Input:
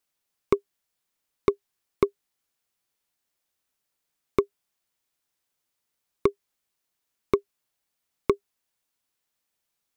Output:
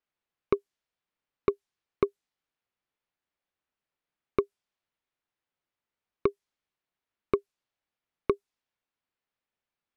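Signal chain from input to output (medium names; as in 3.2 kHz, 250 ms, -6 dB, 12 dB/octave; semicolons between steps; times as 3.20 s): level-controlled noise filter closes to 2.8 kHz, open at -22.5 dBFS; trim -3.5 dB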